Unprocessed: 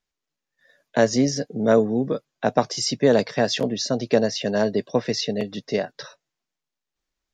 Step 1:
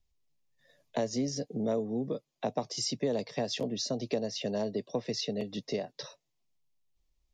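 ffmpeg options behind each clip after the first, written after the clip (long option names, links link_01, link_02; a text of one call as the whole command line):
ffmpeg -i in.wav -filter_complex "[0:a]acrossover=split=110|400|2900[link_01][link_02][link_03][link_04];[link_01]acompressor=mode=upward:threshold=-58dB:ratio=2.5[link_05];[link_05][link_02][link_03][link_04]amix=inputs=4:normalize=0,equalizer=frequency=1500:width=2.9:gain=-14,acompressor=threshold=-30dB:ratio=2.5,volume=-2.5dB" out.wav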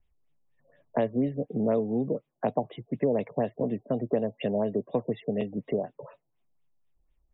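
ffmpeg -i in.wav -af "afftfilt=real='re*lt(b*sr/1024,890*pow(3900/890,0.5+0.5*sin(2*PI*4.1*pts/sr)))':imag='im*lt(b*sr/1024,890*pow(3900/890,0.5+0.5*sin(2*PI*4.1*pts/sr)))':win_size=1024:overlap=0.75,volume=5dB" out.wav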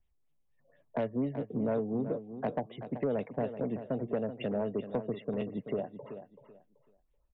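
ffmpeg -i in.wav -af "asoftclip=type=tanh:threshold=-18.5dB,aecho=1:1:382|764|1146:0.282|0.0676|0.0162,volume=-4dB" out.wav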